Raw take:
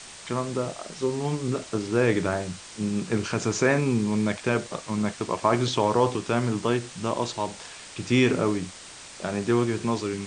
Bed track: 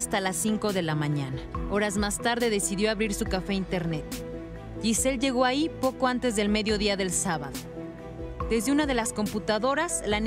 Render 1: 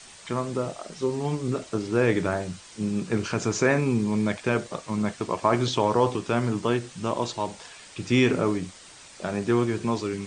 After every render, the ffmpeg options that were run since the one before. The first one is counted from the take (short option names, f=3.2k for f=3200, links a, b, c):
-af "afftdn=nr=6:nf=-44"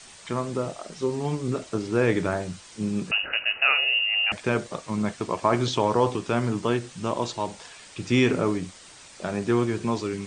-filter_complex "[0:a]asettb=1/sr,asplit=3[a][b][c];[a]atrim=end=3.114[d];[b]atrim=start=3.11:end=4.32,asetpts=PTS-STARTPTS,afade=t=in:d=0.004:c=qsin,afade=t=out:st=1.206:d=0.004:c=qsin,lowpass=f=2.6k:t=q:w=0.5098,lowpass=f=2.6k:t=q:w=0.6013,lowpass=f=2.6k:t=q:w=0.9,lowpass=f=2.6k:t=q:w=2.563,afreqshift=-3000[e];[c]atrim=start=4.316[f];[d][e]acrossfade=d=0.004:c1=hsin:c2=qsin[g];[g][f]acrossfade=d=0.004:c1=qsin:c2=hsin"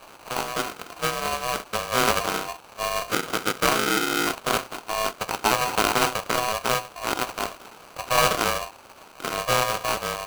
-af "acrusher=samples=40:mix=1:aa=0.000001,aeval=exprs='val(0)*sgn(sin(2*PI*870*n/s))':c=same"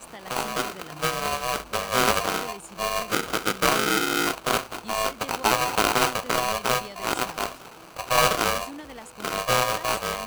-filter_complex "[1:a]volume=-16dB[a];[0:a][a]amix=inputs=2:normalize=0"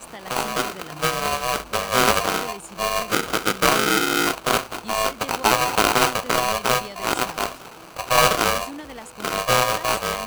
-af "volume=3.5dB"